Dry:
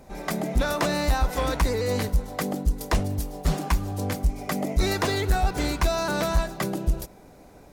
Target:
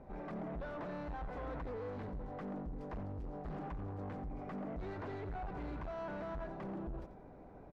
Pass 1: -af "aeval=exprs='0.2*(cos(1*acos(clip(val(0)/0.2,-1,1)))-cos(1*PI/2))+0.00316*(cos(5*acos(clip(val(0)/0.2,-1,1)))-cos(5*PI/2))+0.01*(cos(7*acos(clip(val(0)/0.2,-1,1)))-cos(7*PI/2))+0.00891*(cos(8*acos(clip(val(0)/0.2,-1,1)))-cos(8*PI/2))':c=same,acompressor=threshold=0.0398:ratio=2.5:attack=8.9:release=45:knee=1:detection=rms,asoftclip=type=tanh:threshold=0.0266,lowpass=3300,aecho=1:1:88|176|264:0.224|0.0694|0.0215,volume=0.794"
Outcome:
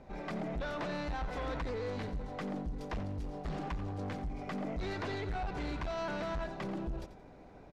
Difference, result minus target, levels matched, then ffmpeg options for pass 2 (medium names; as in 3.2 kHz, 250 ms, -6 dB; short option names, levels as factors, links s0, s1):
4 kHz band +11.0 dB; saturation: distortion -4 dB
-af "aeval=exprs='0.2*(cos(1*acos(clip(val(0)/0.2,-1,1)))-cos(1*PI/2))+0.00316*(cos(5*acos(clip(val(0)/0.2,-1,1)))-cos(5*PI/2))+0.01*(cos(7*acos(clip(val(0)/0.2,-1,1)))-cos(7*PI/2))+0.00891*(cos(8*acos(clip(val(0)/0.2,-1,1)))-cos(8*PI/2))':c=same,acompressor=threshold=0.0398:ratio=2.5:attack=8.9:release=45:knee=1:detection=rms,asoftclip=type=tanh:threshold=0.0126,lowpass=1400,aecho=1:1:88|176|264:0.224|0.0694|0.0215,volume=0.794"